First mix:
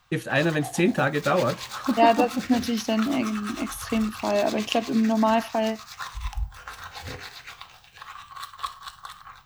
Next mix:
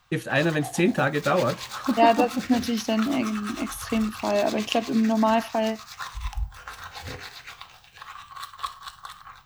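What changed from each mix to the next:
nothing changed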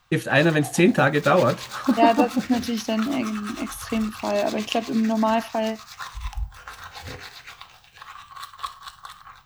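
first voice +4.5 dB

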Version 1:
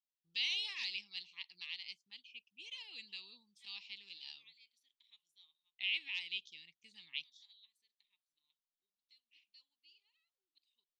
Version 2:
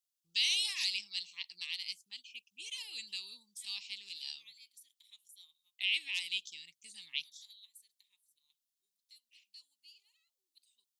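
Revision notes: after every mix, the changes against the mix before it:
master: remove high-frequency loss of the air 240 metres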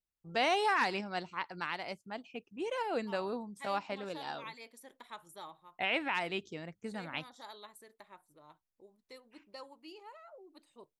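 first voice −11.0 dB
master: remove inverse Chebyshev high-pass filter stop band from 1,600 Hz, stop band 40 dB

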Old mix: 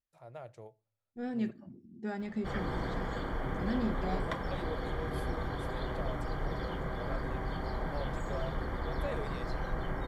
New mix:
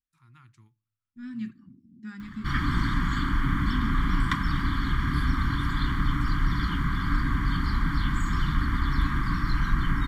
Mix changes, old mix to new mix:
background +12.0 dB
master: add Chebyshev band-stop filter 290–1,100 Hz, order 3

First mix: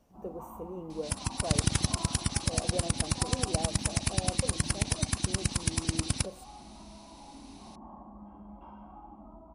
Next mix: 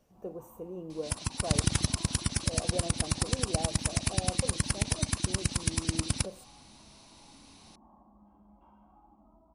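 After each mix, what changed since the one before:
first sound −11.0 dB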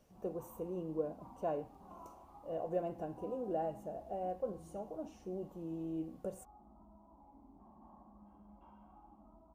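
second sound: muted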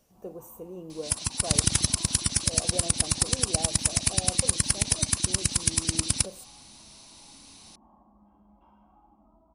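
second sound: unmuted
master: add high-shelf EQ 3,700 Hz +10.5 dB

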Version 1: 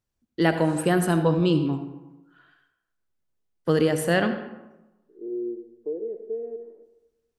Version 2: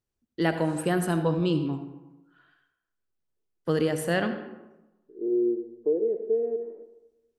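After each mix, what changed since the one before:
first voice −4.0 dB
second voice +6.0 dB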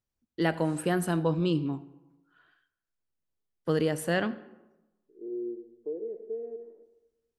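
first voice: send −10.0 dB
second voice −10.5 dB

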